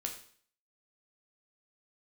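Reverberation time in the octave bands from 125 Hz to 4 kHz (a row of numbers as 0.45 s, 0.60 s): 0.50 s, 0.55 s, 0.50 s, 0.50 s, 0.50 s, 0.50 s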